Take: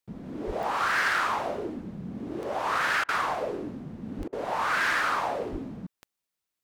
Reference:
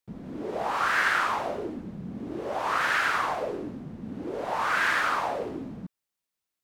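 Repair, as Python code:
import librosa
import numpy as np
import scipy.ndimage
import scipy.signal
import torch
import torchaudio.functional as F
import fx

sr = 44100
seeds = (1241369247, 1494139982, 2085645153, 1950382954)

y = fx.fix_declip(x, sr, threshold_db=-20.5)
y = fx.fix_declick_ar(y, sr, threshold=10.0)
y = fx.fix_deplosive(y, sr, at_s=(0.46, 4.17, 5.51))
y = fx.fix_interpolate(y, sr, at_s=(3.04, 4.28), length_ms=45.0)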